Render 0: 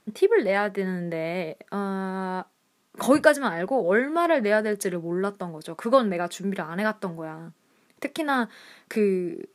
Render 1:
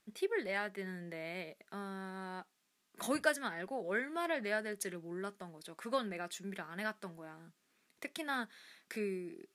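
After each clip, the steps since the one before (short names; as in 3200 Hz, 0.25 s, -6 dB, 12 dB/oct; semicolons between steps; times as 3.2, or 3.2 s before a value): graphic EQ 125/250/500/1000 Hz -10/-5/-7/-6 dB; gain -8 dB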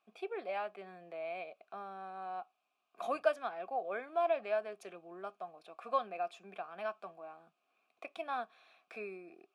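vowel filter a; gain +11.5 dB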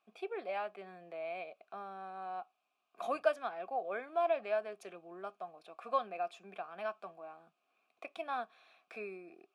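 nothing audible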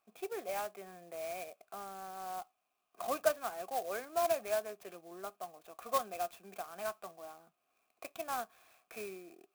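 clock jitter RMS 0.052 ms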